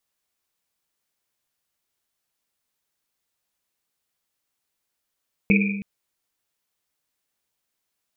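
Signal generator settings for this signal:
drum after Risset length 0.32 s, pitch 200 Hz, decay 1.31 s, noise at 2,400 Hz, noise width 250 Hz, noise 40%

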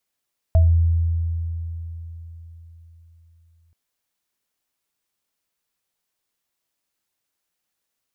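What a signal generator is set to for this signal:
inharmonic partials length 3.18 s, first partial 83.3 Hz, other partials 651 Hz, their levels −11 dB, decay 4.08 s, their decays 0.26 s, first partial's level −10 dB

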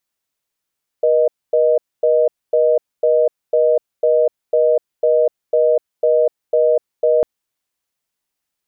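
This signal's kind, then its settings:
call progress tone reorder tone, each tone −13.5 dBFS 6.20 s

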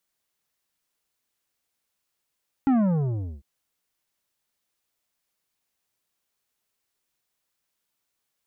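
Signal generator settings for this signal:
bass drop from 280 Hz, over 0.75 s, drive 10 dB, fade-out 0.72 s, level −18 dB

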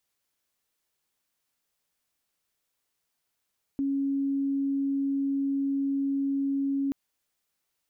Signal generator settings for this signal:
tone sine 276 Hz −24.5 dBFS 3.13 s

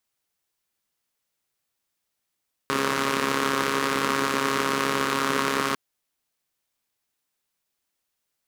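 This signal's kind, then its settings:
pulse-train model of a four-cylinder engine, steady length 3.05 s, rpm 4,100, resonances 270/420/1,100 Hz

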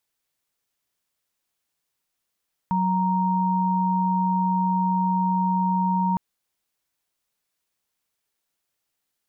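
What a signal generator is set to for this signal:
held notes F#3/A#5 sine, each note −22 dBFS 3.46 s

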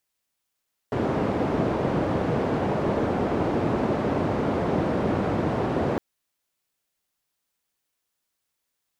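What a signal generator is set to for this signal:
band-limited noise 90–510 Hz, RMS −24.5 dBFS 5.06 s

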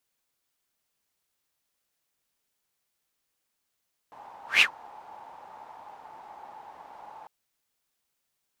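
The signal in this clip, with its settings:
pass-by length 3.15 s, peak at 0:00.49, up 0.16 s, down 0.10 s, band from 860 Hz, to 2,700 Hz, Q 8.8, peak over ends 30 dB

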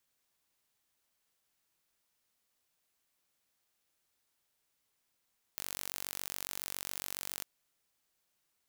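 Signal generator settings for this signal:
impulse train 47.2 per second, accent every 0, −12 dBFS 1.86 s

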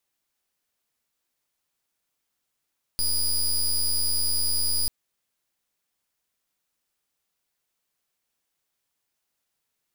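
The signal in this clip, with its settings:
pulse wave 4,910 Hz, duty 17% −23.5 dBFS 1.89 s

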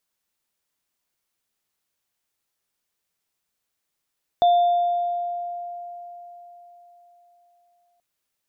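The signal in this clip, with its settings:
inharmonic partials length 3.58 s, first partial 700 Hz, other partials 3,550 Hz, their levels −18 dB, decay 4.14 s, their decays 1.40 s, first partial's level −12.5 dB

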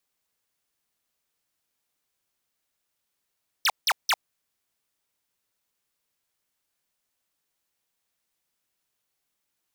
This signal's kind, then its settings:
repeated falling chirps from 6,400 Hz, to 650 Hz, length 0.05 s square, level −21 dB, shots 3, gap 0.17 s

